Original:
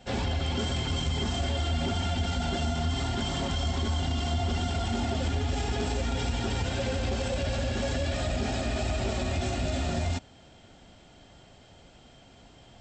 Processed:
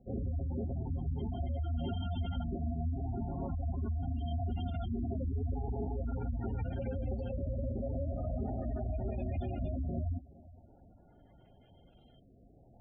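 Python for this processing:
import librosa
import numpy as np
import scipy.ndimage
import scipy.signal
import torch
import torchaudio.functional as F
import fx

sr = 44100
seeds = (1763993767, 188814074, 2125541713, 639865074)

y = fx.filter_lfo_lowpass(x, sr, shape='saw_up', hz=0.41, low_hz=440.0, high_hz=5300.0, q=0.99)
y = fx.echo_feedback(y, sr, ms=419, feedback_pct=35, wet_db=-20.5)
y = fx.spec_gate(y, sr, threshold_db=-15, keep='strong')
y = fx.tilt_shelf(y, sr, db=3.0, hz=670.0)
y = F.gain(torch.from_numpy(y), -8.0).numpy()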